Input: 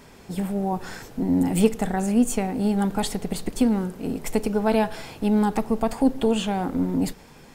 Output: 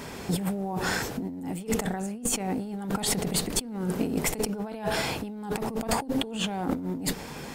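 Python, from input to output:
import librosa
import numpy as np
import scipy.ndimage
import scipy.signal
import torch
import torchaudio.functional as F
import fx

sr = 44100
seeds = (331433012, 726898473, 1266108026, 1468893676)

y = fx.highpass(x, sr, hz=67.0, slope=6)
y = fx.over_compress(y, sr, threshold_db=-33.0, ratio=-1.0)
y = y * 10.0 ** (2.0 / 20.0)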